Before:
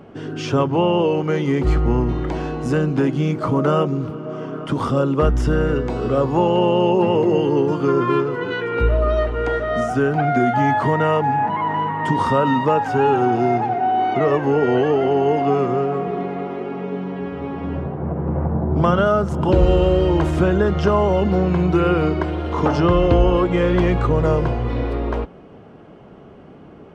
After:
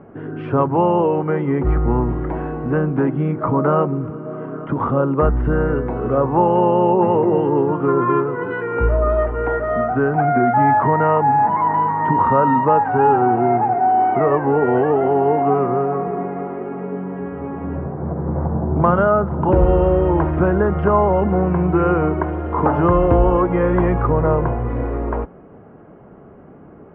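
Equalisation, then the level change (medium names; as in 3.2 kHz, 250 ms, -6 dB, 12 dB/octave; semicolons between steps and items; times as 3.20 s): low-pass 1.9 kHz 24 dB/octave; dynamic bell 910 Hz, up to +5 dB, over -31 dBFS, Q 1.7; 0.0 dB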